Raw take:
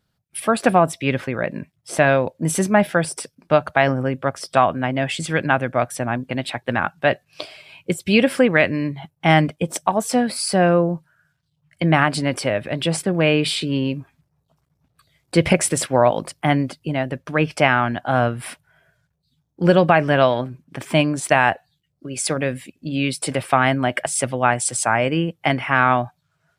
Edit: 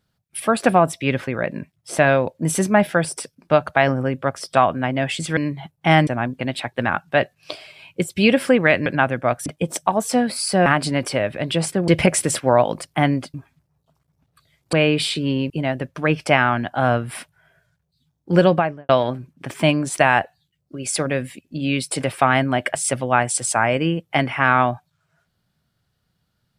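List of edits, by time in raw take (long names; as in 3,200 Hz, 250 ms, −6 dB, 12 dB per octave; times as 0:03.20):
0:05.37–0:05.97: swap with 0:08.76–0:09.46
0:10.66–0:11.97: remove
0:13.19–0:13.96: swap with 0:15.35–0:16.81
0:19.74–0:20.20: fade out and dull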